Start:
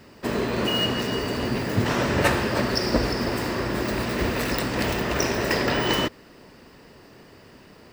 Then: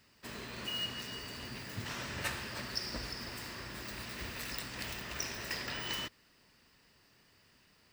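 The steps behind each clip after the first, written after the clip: amplifier tone stack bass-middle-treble 5-5-5; trim -3.5 dB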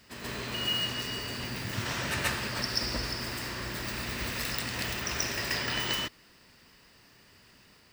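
reverse echo 133 ms -4.5 dB; trim +6.5 dB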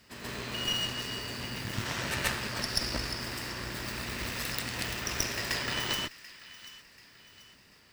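feedback echo behind a high-pass 736 ms, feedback 43%, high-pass 1.4 kHz, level -15.5 dB; Chebyshev shaper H 3 -17 dB, 4 -16 dB, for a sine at -12 dBFS; trim +3 dB

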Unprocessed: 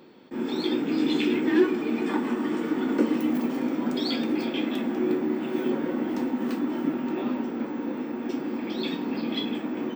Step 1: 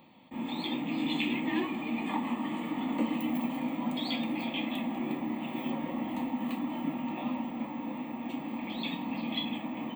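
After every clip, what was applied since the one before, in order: static phaser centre 1.5 kHz, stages 6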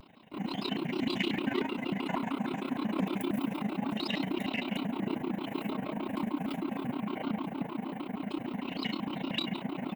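in parallel at -5 dB: saturation -30 dBFS, distortion -13 dB; on the sum: AM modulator 29 Hz, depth 65%; vibrato with a chosen wave square 6.5 Hz, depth 250 cents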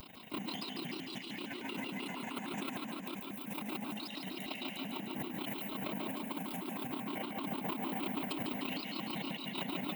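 pre-emphasis filter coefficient 0.8; compressor with a negative ratio -52 dBFS, ratio -1; thinning echo 150 ms, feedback 64%, high-pass 170 Hz, level -6 dB; trim +10 dB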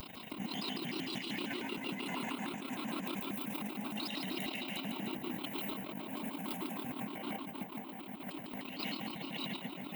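compressor with a negative ratio -42 dBFS, ratio -0.5; trim +2 dB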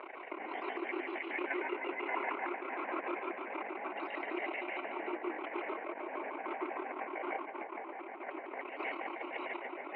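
Chebyshev band-pass 350–2300 Hz, order 4; trim +7 dB

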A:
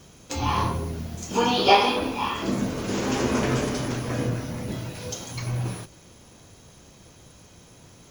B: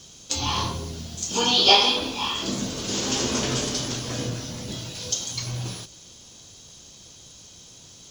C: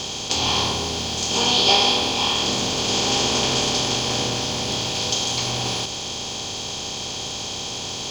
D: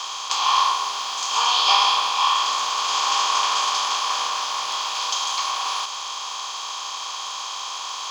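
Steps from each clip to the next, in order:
high-order bell 4.9 kHz +13 dB; trim -3.5 dB
spectral levelling over time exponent 0.4; trim -3.5 dB
resonant high-pass 1.1 kHz, resonance Q 8.2; trim -3 dB

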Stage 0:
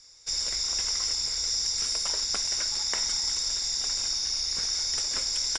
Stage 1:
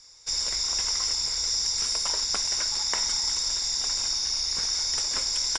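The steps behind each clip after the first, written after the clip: peaking EQ 970 Hz +5 dB 0.48 oct; trim +1.5 dB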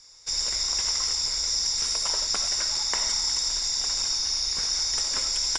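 reverberation RT60 0.25 s, pre-delay 45 ms, DRR 7 dB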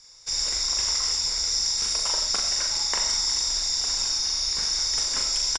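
doubling 40 ms -5 dB

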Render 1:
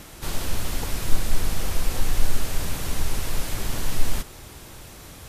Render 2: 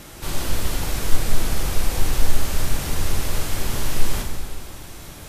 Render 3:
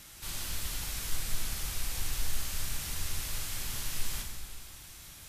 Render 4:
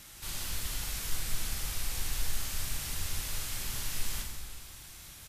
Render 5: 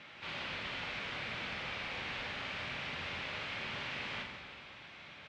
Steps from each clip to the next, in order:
plate-style reverb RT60 1.9 s, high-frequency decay 0.8×, DRR 1 dB; trim +1 dB
amplifier tone stack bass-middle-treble 5-5-5
doubling 45 ms -11.5 dB
cabinet simulation 200–3200 Hz, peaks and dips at 330 Hz -4 dB, 570 Hz +4 dB, 2.3 kHz +4 dB; trim +4 dB

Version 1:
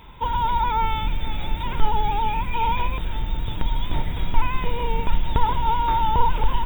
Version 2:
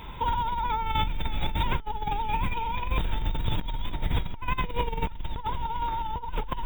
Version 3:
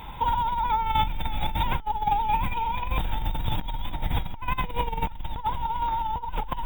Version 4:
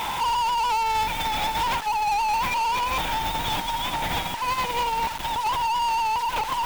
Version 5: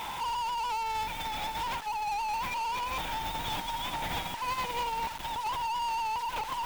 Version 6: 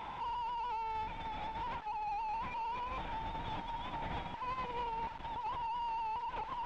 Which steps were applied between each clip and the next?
compressor with a negative ratio -26 dBFS, ratio -1; trim -2 dB
graphic EQ with 31 bands 400 Hz -6 dB, 800 Hz +9 dB, 16 kHz +12 dB
bit crusher 8-bit; overdrive pedal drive 32 dB, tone 6.2 kHz, clips at -11 dBFS; trim -6.5 dB
gain riding 2 s; trim -8.5 dB
tape spacing loss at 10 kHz 33 dB; trim -3 dB

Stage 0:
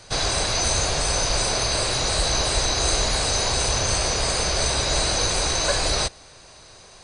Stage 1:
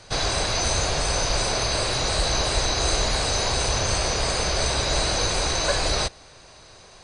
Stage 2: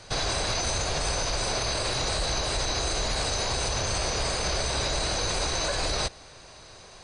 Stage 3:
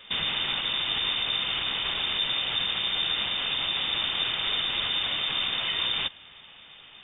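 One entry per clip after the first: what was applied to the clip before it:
treble shelf 9.2 kHz -10.5 dB
peak limiter -18.5 dBFS, peak gain reduction 8 dB
frequency inversion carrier 3.6 kHz

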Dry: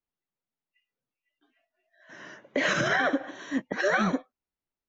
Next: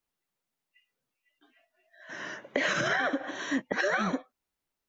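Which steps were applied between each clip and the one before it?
bass shelf 450 Hz -4 dB; compression 5:1, threshold -33 dBFS, peak gain reduction 10.5 dB; trim +7 dB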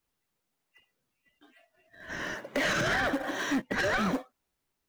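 in parallel at -10 dB: decimation with a swept rate 35×, swing 160% 1.1 Hz; on the sum: saturation -27 dBFS, distortion -10 dB; trim +3.5 dB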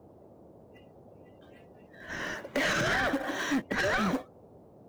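band noise 67–650 Hz -54 dBFS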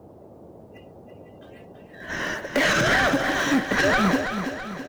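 feedback delay 330 ms, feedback 50%, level -8 dB; trim +7.5 dB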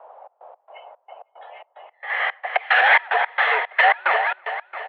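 trance gate "xx.x.xx.x." 111 bpm -24 dB; mistuned SSB +170 Hz 450–2900 Hz; trim +7 dB

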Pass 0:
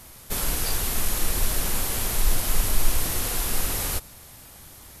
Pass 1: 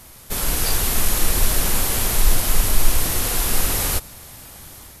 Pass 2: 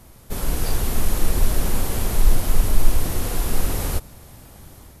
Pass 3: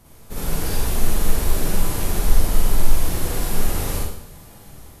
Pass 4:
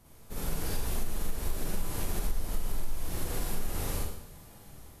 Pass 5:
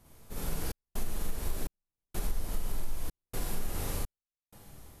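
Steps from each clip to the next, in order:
level rider gain up to 4 dB; trim +2 dB
tilt shelf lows +5.5 dB; trim -4 dB
Schroeder reverb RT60 0.7 s, DRR -5 dB; trim -5 dB
compression 4:1, threshold -17 dBFS, peak gain reduction 10.5 dB; trim -8 dB
trance gate "xxx.xxx..x" 63 bpm -60 dB; trim -1.5 dB

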